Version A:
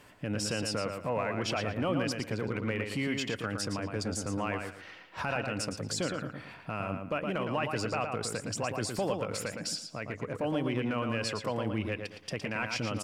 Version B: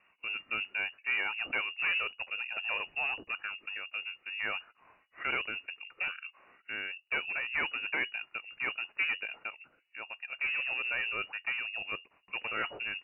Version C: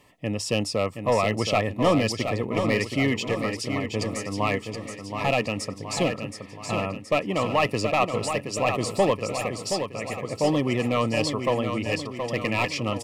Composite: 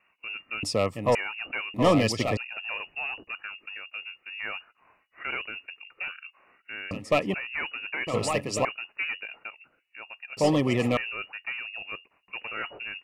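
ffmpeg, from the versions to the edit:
-filter_complex "[2:a]asplit=5[a][b][c][d][e];[1:a]asplit=6[f][g][h][i][j][k];[f]atrim=end=0.632[l];[a]atrim=start=0.628:end=1.152[m];[g]atrim=start=1.148:end=1.742[n];[b]atrim=start=1.738:end=2.372[o];[h]atrim=start=2.368:end=6.912[p];[c]atrim=start=6.908:end=7.342[q];[i]atrim=start=7.338:end=8.072[r];[d]atrim=start=8.068:end=8.652[s];[j]atrim=start=8.648:end=10.372[t];[e]atrim=start=10.368:end=10.972[u];[k]atrim=start=10.968[v];[l][m]acrossfade=d=0.004:c1=hsin:c2=hsin[w];[w][n]acrossfade=d=0.004:c1=hsin:c2=hsin[x];[x][o]acrossfade=d=0.004:c1=hsin:c2=hsin[y];[y][p]acrossfade=d=0.004:c1=hsin:c2=hsin[z];[z][q]acrossfade=d=0.004:c1=hsin:c2=hsin[aa];[aa][r]acrossfade=d=0.004:c1=hsin:c2=hsin[ab];[ab][s]acrossfade=d=0.004:c1=hsin:c2=hsin[ac];[ac][t]acrossfade=d=0.004:c1=hsin:c2=hsin[ad];[ad][u]acrossfade=d=0.004:c1=hsin:c2=hsin[ae];[ae][v]acrossfade=d=0.004:c1=hsin:c2=hsin"

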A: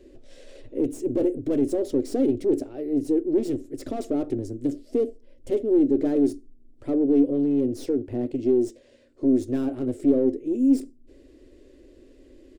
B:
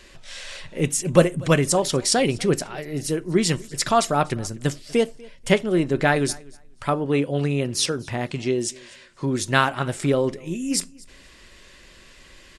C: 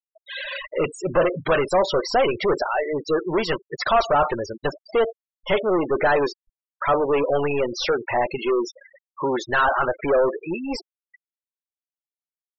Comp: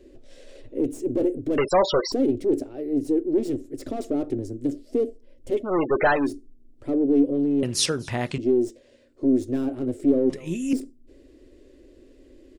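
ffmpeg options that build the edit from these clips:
-filter_complex "[2:a]asplit=2[a][b];[1:a]asplit=2[c][d];[0:a]asplit=5[e][f][g][h][i];[e]atrim=end=1.582[j];[a]atrim=start=1.578:end=2.122[k];[f]atrim=start=2.118:end=5.79[l];[b]atrim=start=5.55:end=6.32[m];[g]atrim=start=6.08:end=7.632[n];[c]atrim=start=7.628:end=8.382[o];[h]atrim=start=8.378:end=10.302[p];[d]atrim=start=10.298:end=10.732[q];[i]atrim=start=10.728[r];[j][k]acrossfade=d=0.004:c1=hsin:c2=hsin[s];[s][l]acrossfade=d=0.004:c1=hsin:c2=hsin[t];[t][m]acrossfade=d=0.24:c1=tri:c2=tri[u];[u][n]acrossfade=d=0.24:c1=tri:c2=tri[v];[v][o]acrossfade=d=0.004:c1=hsin:c2=hsin[w];[w][p]acrossfade=d=0.004:c1=hsin:c2=hsin[x];[x][q]acrossfade=d=0.004:c1=hsin:c2=hsin[y];[y][r]acrossfade=d=0.004:c1=hsin:c2=hsin"

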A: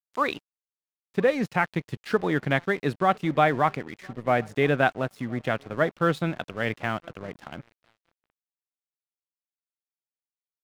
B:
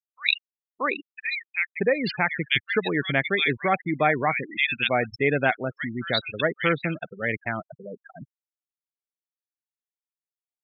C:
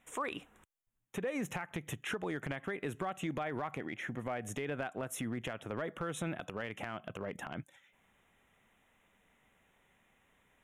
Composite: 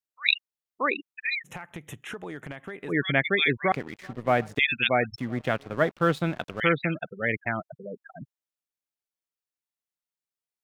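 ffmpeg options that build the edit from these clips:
-filter_complex "[0:a]asplit=2[a][b];[1:a]asplit=4[c][d][e][f];[c]atrim=end=1.5[g];[2:a]atrim=start=1.44:end=2.93[h];[d]atrim=start=2.87:end=3.722[i];[a]atrim=start=3.718:end=4.592[j];[e]atrim=start=4.588:end=5.182[k];[b]atrim=start=5.178:end=6.602[l];[f]atrim=start=6.598[m];[g][h]acrossfade=d=0.06:c1=tri:c2=tri[n];[n][i]acrossfade=d=0.06:c1=tri:c2=tri[o];[o][j]acrossfade=d=0.004:c1=hsin:c2=hsin[p];[p][k]acrossfade=d=0.004:c1=hsin:c2=hsin[q];[q][l]acrossfade=d=0.004:c1=hsin:c2=hsin[r];[r][m]acrossfade=d=0.004:c1=hsin:c2=hsin"

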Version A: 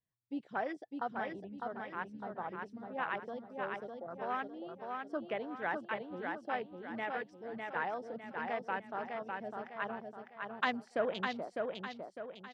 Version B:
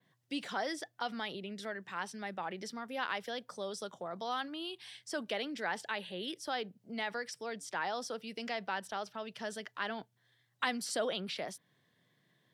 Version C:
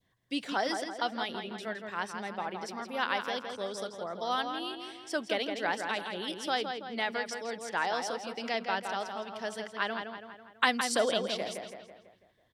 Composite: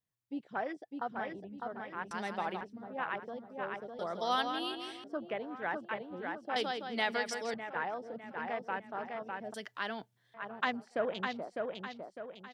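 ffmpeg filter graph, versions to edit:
-filter_complex "[2:a]asplit=3[a][b][c];[0:a]asplit=5[d][e][f][g][h];[d]atrim=end=2.112[i];[a]atrim=start=2.108:end=2.612[j];[e]atrim=start=2.608:end=3.992[k];[b]atrim=start=3.988:end=5.042[l];[f]atrim=start=5.038:end=6.562[m];[c]atrim=start=6.558:end=7.542[n];[g]atrim=start=7.538:end=9.542[o];[1:a]atrim=start=9.538:end=10.342[p];[h]atrim=start=10.338[q];[i][j]acrossfade=d=0.004:c1=hsin:c2=hsin[r];[r][k]acrossfade=d=0.004:c1=hsin:c2=hsin[s];[s][l]acrossfade=d=0.004:c1=hsin:c2=hsin[t];[t][m]acrossfade=d=0.004:c1=hsin:c2=hsin[u];[u][n]acrossfade=d=0.004:c1=hsin:c2=hsin[v];[v][o]acrossfade=d=0.004:c1=hsin:c2=hsin[w];[w][p]acrossfade=d=0.004:c1=hsin:c2=hsin[x];[x][q]acrossfade=d=0.004:c1=hsin:c2=hsin"

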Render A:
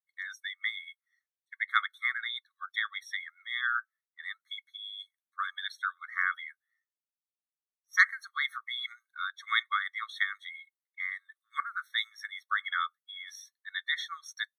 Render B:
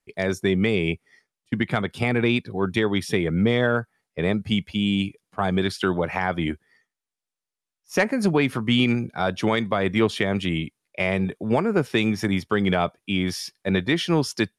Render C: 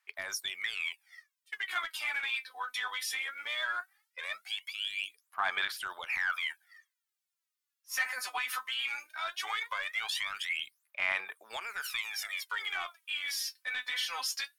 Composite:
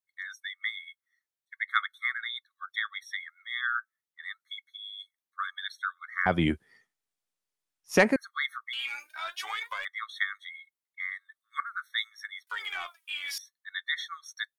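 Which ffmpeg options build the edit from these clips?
-filter_complex "[2:a]asplit=2[a][b];[0:a]asplit=4[c][d][e][f];[c]atrim=end=6.262[g];[1:a]atrim=start=6.258:end=8.162[h];[d]atrim=start=8.158:end=8.732[i];[a]atrim=start=8.728:end=9.852[j];[e]atrim=start=9.848:end=12.472[k];[b]atrim=start=12.468:end=13.382[l];[f]atrim=start=13.378[m];[g][h]acrossfade=d=0.004:c1=hsin:c2=hsin[n];[n][i]acrossfade=d=0.004:c1=hsin:c2=hsin[o];[o][j]acrossfade=d=0.004:c1=hsin:c2=hsin[p];[p][k]acrossfade=d=0.004:c1=hsin:c2=hsin[q];[q][l]acrossfade=d=0.004:c1=hsin:c2=hsin[r];[r][m]acrossfade=d=0.004:c1=hsin:c2=hsin"

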